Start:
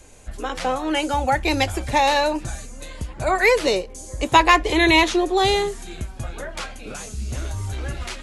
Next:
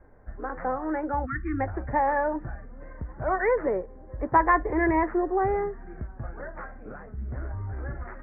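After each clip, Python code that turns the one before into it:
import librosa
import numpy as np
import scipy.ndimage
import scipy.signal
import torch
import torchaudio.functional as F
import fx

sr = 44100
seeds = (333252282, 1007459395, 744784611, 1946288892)

y = fx.spec_erase(x, sr, start_s=1.26, length_s=0.34, low_hz=350.0, high_hz=1100.0)
y = scipy.signal.sosfilt(scipy.signal.butter(12, 1900.0, 'lowpass', fs=sr, output='sos'), y)
y = y * 10.0 ** (-5.5 / 20.0)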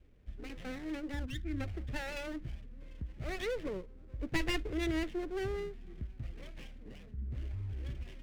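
y = fx.lower_of_two(x, sr, delay_ms=0.37)
y = fx.peak_eq(y, sr, hz=870.0, db=-14.5, octaves=1.8)
y = y * 10.0 ** (-5.0 / 20.0)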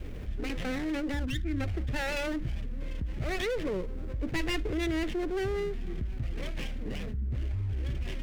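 y = fx.env_flatten(x, sr, amount_pct=70)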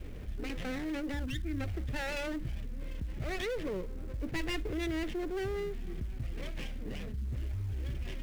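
y = fx.quant_float(x, sr, bits=4)
y = y * 10.0 ** (-4.0 / 20.0)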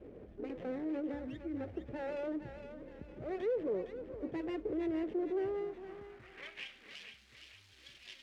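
y = fx.filter_sweep_bandpass(x, sr, from_hz=450.0, to_hz=4000.0, start_s=5.35, end_s=6.98, q=1.5)
y = fx.echo_thinned(y, sr, ms=460, feedback_pct=45, hz=790.0, wet_db=-7)
y = y * 10.0 ** (3.0 / 20.0)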